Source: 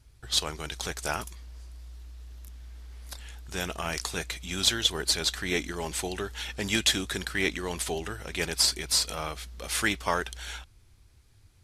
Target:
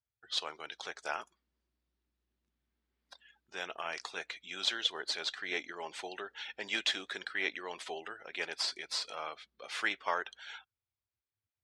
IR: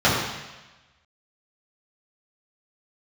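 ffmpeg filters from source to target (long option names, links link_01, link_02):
-af "afftdn=noise_reduction=24:noise_floor=-45,highpass=530,lowpass=3800,volume=-4.5dB"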